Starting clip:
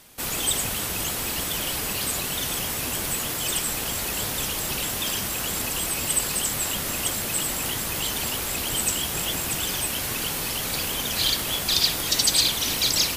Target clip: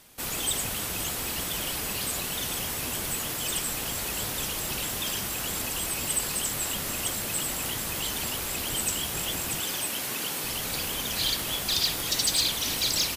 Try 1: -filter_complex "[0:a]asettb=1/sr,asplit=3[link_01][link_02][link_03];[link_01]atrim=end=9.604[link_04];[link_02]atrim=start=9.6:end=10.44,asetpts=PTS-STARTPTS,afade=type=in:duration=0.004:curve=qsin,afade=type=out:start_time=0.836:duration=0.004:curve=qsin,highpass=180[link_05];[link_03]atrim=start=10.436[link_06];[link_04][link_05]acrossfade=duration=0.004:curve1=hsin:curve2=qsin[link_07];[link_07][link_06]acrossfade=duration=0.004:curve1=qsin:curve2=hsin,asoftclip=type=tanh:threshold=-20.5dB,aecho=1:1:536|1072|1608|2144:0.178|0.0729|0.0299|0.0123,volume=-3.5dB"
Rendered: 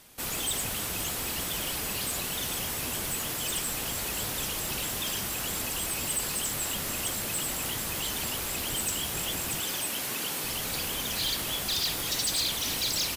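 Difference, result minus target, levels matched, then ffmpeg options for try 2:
soft clipping: distortion +10 dB
-filter_complex "[0:a]asettb=1/sr,asplit=3[link_01][link_02][link_03];[link_01]atrim=end=9.604[link_04];[link_02]atrim=start=9.6:end=10.44,asetpts=PTS-STARTPTS,afade=type=in:duration=0.004:curve=qsin,afade=type=out:start_time=0.836:duration=0.004:curve=qsin,highpass=180[link_05];[link_03]atrim=start=10.436[link_06];[link_04][link_05]acrossfade=duration=0.004:curve1=hsin:curve2=qsin[link_07];[link_07][link_06]acrossfade=duration=0.004:curve1=qsin:curve2=hsin,asoftclip=type=tanh:threshold=-11.5dB,aecho=1:1:536|1072|1608|2144:0.178|0.0729|0.0299|0.0123,volume=-3.5dB"

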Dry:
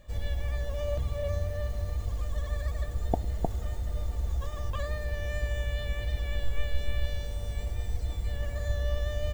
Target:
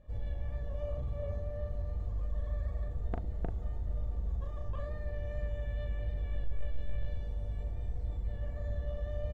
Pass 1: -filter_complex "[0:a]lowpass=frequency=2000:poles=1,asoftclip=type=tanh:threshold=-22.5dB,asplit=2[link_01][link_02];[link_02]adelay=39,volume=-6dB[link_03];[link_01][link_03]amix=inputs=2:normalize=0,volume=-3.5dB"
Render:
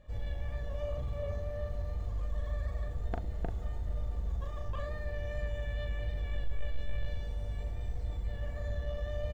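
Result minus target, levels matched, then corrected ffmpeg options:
2,000 Hz band +6.5 dB
-filter_complex "[0:a]lowpass=frequency=640:poles=1,asoftclip=type=tanh:threshold=-22.5dB,asplit=2[link_01][link_02];[link_02]adelay=39,volume=-6dB[link_03];[link_01][link_03]amix=inputs=2:normalize=0,volume=-3.5dB"

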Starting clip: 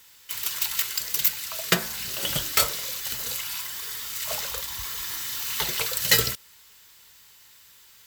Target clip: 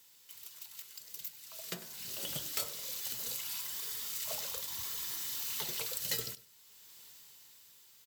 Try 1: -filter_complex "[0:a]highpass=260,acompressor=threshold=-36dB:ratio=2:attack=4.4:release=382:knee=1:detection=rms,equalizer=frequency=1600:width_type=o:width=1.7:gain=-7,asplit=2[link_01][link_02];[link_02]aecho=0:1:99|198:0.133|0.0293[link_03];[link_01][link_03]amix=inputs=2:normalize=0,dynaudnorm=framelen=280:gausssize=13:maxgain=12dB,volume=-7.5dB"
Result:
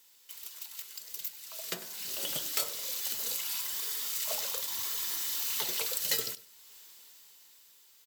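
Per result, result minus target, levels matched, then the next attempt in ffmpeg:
125 Hz band −9.0 dB; downward compressor: peak gain reduction −5.5 dB
-filter_complex "[0:a]highpass=120,acompressor=threshold=-36dB:ratio=2:attack=4.4:release=382:knee=1:detection=rms,equalizer=frequency=1600:width_type=o:width=1.7:gain=-7,asplit=2[link_01][link_02];[link_02]aecho=0:1:99|198:0.133|0.0293[link_03];[link_01][link_03]amix=inputs=2:normalize=0,dynaudnorm=framelen=280:gausssize=13:maxgain=12dB,volume=-7.5dB"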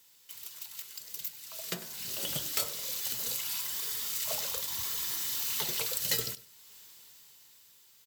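downward compressor: peak gain reduction −5 dB
-filter_complex "[0:a]highpass=120,acompressor=threshold=-46.5dB:ratio=2:attack=4.4:release=382:knee=1:detection=rms,equalizer=frequency=1600:width_type=o:width=1.7:gain=-7,asplit=2[link_01][link_02];[link_02]aecho=0:1:99|198:0.133|0.0293[link_03];[link_01][link_03]amix=inputs=2:normalize=0,dynaudnorm=framelen=280:gausssize=13:maxgain=12dB,volume=-7.5dB"

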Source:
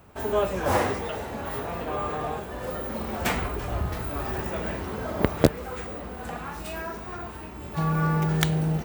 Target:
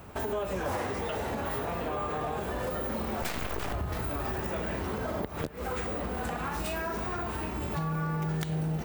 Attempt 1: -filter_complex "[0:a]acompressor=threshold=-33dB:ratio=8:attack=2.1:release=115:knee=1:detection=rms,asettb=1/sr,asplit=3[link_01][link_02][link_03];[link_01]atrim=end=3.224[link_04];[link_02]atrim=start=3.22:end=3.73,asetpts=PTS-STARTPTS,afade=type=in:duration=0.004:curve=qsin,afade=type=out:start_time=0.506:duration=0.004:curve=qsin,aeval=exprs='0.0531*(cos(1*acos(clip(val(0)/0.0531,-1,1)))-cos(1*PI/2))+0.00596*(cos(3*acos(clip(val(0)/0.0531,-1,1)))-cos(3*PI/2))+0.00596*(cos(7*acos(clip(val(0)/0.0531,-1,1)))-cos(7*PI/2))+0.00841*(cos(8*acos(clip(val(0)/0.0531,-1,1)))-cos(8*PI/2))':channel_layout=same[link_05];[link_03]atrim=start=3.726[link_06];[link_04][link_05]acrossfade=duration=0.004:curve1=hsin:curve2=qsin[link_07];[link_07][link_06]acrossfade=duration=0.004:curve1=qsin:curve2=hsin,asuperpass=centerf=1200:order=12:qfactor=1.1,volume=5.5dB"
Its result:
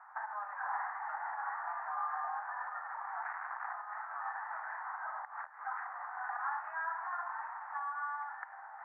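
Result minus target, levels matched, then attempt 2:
1,000 Hz band +6.0 dB
-filter_complex "[0:a]acompressor=threshold=-33dB:ratio=8:attack=2.1:release=115:knee=1:detection=rms,asettb=1/sr,asplit=3[link_01][link_02][link_03];[link_01]atrim=end=3.224[link_04];[link_02]atrim=start=3.22:end=3.73,asetpts=PTS-STARTPTS,afade=type=in:duration=0.004:curve=qsin,afade=type=out:start_time=0.506:duration=0.004:curve=qsin,aeval=exprs='0.0531*(cos(1*acos(clip(val(0)/0.0531,-1,1)))-cos(1*PI/2))+0.00596*(cos(3*acos(clip(val(0)/0.0531,-1,1)))-cos(3*PI/2))+0.00596*(cos(7*acos(clip(val(0)/0.0531,-1,1)))-cos(7*PI/2))+0.00841*(cos(8*acos(clip(val(0)/0.0531,-1,1)))-cos(8*PI/2))':channel_layout=same[link_05];[link_03]atrim=start=3.726[link_06];[link_04][link_05]acrossfade=duration=0.004:curve1=hsin:curve2=qsin[link_07];[link_07][link_06]acrossfade=duration=0.004:curve1=qsin:curve2=hsin,volume=5.5dB"

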